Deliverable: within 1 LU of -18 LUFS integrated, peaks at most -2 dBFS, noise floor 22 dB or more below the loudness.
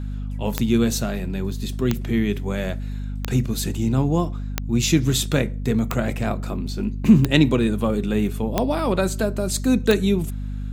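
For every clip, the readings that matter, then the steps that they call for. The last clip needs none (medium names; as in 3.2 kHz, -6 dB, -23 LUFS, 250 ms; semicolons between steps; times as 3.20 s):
clicks found 8; hum 50 Hz; highest harmonic 250 Hz; hum level -26 dBFS; loudness -22.0 LUFS; peak level -2.0 dBFS; loudness target -18.0 LUFS
-> de-click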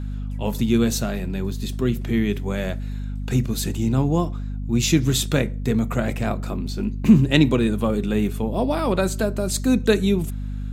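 clicks found 0; hum 50 Hz; highest harmonic 250 Hz; hum level -26 dBFS
-> de-hum 50 Hz, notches 5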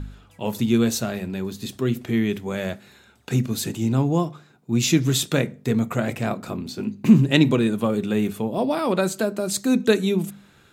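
hum not found; loudness -22.5 LUFS; peak level -2.0 dBFS; loudness target -18.0 LUFS
-> trim +4.5 dB; peak limiter -2 dBFS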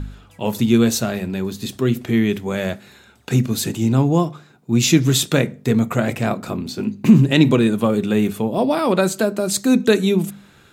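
loudness -18.5 LUFS; peak level -2.0 dBFS; noise floor -50 dBFS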